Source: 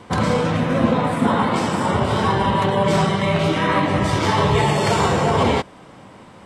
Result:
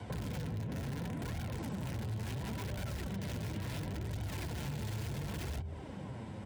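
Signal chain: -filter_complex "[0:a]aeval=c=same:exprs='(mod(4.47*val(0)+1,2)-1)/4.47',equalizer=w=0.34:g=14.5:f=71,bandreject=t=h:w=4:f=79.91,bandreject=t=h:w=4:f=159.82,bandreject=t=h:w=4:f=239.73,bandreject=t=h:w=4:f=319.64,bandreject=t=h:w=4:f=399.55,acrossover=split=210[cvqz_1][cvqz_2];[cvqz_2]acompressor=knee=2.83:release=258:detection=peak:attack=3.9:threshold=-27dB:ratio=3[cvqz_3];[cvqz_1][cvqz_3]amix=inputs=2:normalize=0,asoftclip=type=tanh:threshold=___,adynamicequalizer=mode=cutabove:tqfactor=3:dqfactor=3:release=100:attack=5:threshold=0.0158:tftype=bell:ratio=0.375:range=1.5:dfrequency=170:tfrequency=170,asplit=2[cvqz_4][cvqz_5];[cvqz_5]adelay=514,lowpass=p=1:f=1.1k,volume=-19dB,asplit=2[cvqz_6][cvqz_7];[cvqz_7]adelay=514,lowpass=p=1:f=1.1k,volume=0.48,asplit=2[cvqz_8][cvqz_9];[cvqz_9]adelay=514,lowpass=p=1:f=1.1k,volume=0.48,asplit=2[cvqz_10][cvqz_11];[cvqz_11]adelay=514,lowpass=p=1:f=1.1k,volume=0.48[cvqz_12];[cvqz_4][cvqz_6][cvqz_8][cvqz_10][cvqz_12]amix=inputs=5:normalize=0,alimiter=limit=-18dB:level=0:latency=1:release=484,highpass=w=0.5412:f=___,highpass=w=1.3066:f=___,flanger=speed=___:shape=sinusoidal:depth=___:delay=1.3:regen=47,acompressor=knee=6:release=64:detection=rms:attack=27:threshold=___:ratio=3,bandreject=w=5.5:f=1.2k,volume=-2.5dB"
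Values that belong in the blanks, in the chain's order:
-16.5dB, 55, 55, 0.71, 8.1, -38dB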